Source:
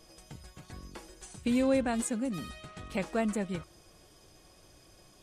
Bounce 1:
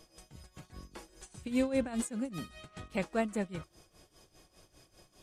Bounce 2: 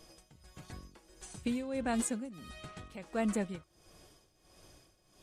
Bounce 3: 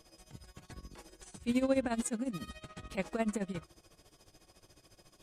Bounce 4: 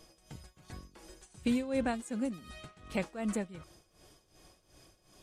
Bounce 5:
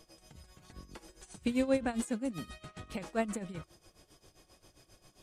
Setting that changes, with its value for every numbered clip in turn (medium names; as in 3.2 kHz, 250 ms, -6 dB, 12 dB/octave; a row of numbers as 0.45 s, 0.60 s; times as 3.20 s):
tremolo, rate: 5 Hz, 1.5 Hz, 14 Hz, 2.7 Hz, 7.5 Hz